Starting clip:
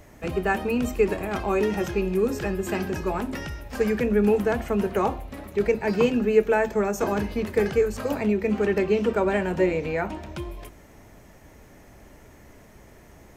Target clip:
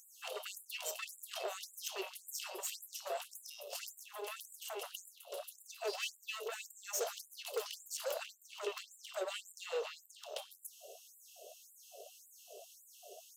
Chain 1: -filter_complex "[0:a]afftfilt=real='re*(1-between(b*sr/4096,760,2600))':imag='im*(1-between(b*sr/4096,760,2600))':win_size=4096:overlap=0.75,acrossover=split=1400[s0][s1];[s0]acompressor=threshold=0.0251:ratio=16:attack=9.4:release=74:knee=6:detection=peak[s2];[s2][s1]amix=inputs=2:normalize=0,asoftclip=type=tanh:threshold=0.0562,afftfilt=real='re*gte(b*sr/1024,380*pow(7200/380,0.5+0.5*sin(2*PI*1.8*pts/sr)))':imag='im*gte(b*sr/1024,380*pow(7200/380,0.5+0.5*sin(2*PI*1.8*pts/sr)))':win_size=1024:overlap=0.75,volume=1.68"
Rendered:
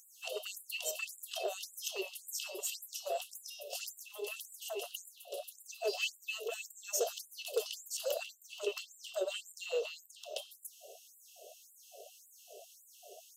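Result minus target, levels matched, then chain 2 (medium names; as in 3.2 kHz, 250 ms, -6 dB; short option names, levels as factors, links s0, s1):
saturation: distortion -12 dB
-filter_complex "[0:a]afftfilt=real='re*(1-between(b*sr/4096,760,2600))':imag='im*(1-between(b*sr/4096,760,2600))':win_size=4096:overlap=0.75,acrossover=split=1400[s0][s1];[s0]acompressor=threshold=0.0251:ratio=16:attack=9.4:release=74:knee=6:detection=peak[s2];[s2][s1]amix=inputs=2:normalize=0,asoftclip=type=tanh:threshold=0.0178,afftfilt=real='re*gte(b*sr/1024,380*pow(7200/380,0.5+0.5*sin(2*PI*1.8*pts/sr)))':imag='im*gte(b*sr/1024,380*pow(7200/380,0.5+0.5*sin(2*PI*1.8*pts/sr)))':win_size=1024:overlap=0.75,volume=1.68"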